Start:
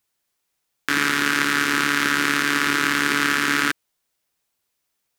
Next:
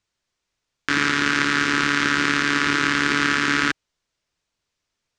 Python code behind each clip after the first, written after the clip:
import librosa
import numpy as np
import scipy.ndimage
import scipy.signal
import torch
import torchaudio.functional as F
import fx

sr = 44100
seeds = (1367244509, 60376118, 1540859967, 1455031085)

y = scipy.signal.sosfilt(scipy.signal.butter(4, 6900.0, 'lowpass', fs=sr, output='sos'), x)
y = fx.low_shelf(y, sr, hz=100.0, db=11.5)
y = fx.notch(y, sr, hz=790.0, q=12.0)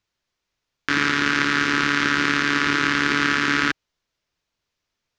y = fx.peak_eq(x, sr, hz=8400.0, db=-8.5, octaves=0.51)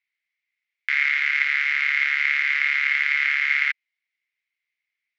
y = fx.ladder_bandpass(x, sr, hz=2200.0, resonance_pct=85)
y = y * librosa.db_to_amplitude(4.0)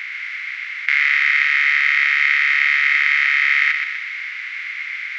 y = fx.bin_compress(x, sr, power=0.2)
y = fx.echo_feedback(y, sr, ms=124, feedback_pct=52, wet_db=-6.0)
y = y * librosa.db_to_amplitude(1.5)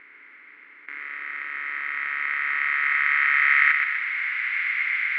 y = fx.filter_sweep_lowpass(x, sr, from_hz=490.0, to_hz=1900.0, start_s=0.92, end_s=4.56, q=0.92)
y = y * librosa.db_to_amplitude(4.5)